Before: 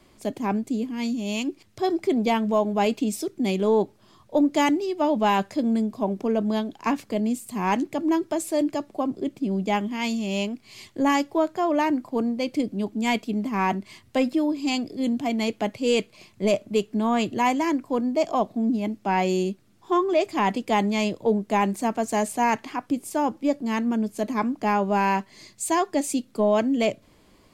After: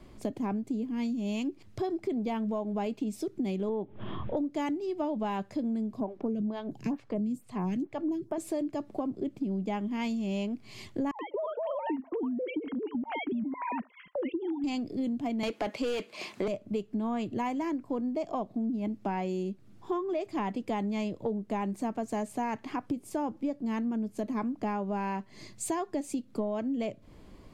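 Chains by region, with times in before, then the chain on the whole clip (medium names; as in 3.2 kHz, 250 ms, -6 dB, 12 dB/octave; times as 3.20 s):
3.69–4.37 s: Chebyshev low-pass 3.4 kHz, order 5 + upward compressor, threshold -23 dBFS
6.00–8.38 s: peaking EQ 140 Hz +13.5 dB 0.68 oct + lamp-driven phase shifter 2.2 Hz
11.11–14.64 s: formants replaced by sine waves + bands offset in time lows, highs 80 ms, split 750 Hz + compression 2:1, threshold -32 dBFS
15.43–16.48 s: high-pass 230 Hz + overdrive pedal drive 21 dB, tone 7.1 kHz, clips at -12 dBFS
whole clip: tilt EQ -2 dB/octave; compression 6:1, threshold -30 dBFS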